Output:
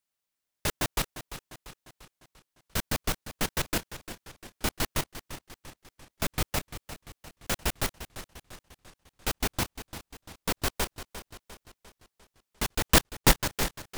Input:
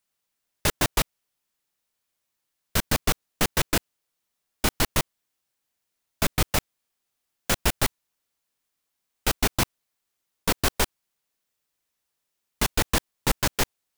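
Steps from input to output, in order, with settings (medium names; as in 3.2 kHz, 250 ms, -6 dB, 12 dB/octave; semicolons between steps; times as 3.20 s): 12.91–13.42 s: waveshaping leveller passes 5; modulated delay 347 ms, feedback 52%, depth 98 cents, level -12.5 dB; trim -6 dB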